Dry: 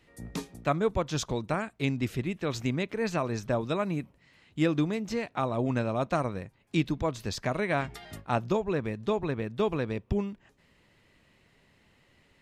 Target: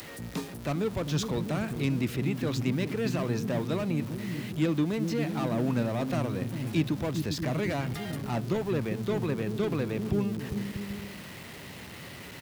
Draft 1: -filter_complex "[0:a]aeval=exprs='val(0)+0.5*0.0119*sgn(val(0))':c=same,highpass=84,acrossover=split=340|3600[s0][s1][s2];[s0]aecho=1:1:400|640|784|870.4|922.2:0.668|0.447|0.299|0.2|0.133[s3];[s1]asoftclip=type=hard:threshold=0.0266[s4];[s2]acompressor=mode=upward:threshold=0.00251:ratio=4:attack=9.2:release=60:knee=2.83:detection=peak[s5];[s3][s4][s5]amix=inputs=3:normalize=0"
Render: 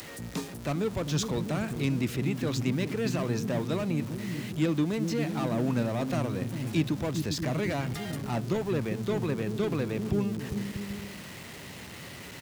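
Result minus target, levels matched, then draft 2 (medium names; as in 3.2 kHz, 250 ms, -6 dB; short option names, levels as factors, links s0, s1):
8 kHz band +3.0 dB
-filter_complex "[0:a]aeval=exprs='val(0)+0.5*0.0119*sgn(val(0))':c=same,highpass=84,equalizer=f=7000:t=o:w=0.98:g=-4,acrossover=split=340|3600[s0][s1][s2];[s0]aecho=1:1:400|640|784|870.4|922.2:0.668|0.447|0.299|0.2|0.133[s3];[s1]asoftclip=type=hard:threshold=0.0266[s4];[s2]acompressor=mode=upward:threshold=0.00251:ratio=4:attack=9.2:release=60:knee=2.83:detection=peak[s5];[s3][s4][s5]amix=inputs=3:normalize=0"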